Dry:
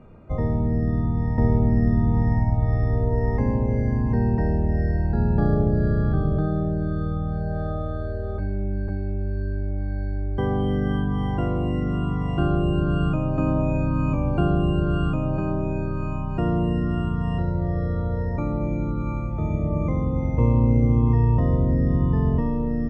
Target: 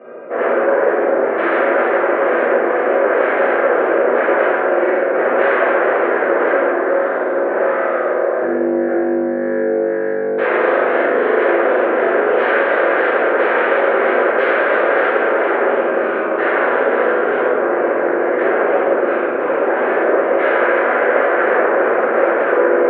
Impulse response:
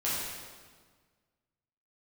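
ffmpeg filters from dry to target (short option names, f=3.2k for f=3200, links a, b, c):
-filter_complex "[0:a]aeval=exprs='0.422*sin(PI/2*10*val(0)/0.422)':c=same,highpass=f=350:w=0.5412,highpass=f=350:w=1.3066,equalizer=f=380:t=q:w=4:g=4,equalizer=f=550:t=q:w=4:g=9,equalizer=f=890:t=q:w=4:g=-6,equalizer=f=1.6k:t=q:w=4:g=6,lowpass=f=2.3k:w=0.5412,lowpass=f=2.3k:w=1.3066[a];[1:a]atrim=start_sample=2205,asetrate=66150,aresample=44100[b];[a][b]afir=irnorm=-1:irlink=0,volume=-9.5dB"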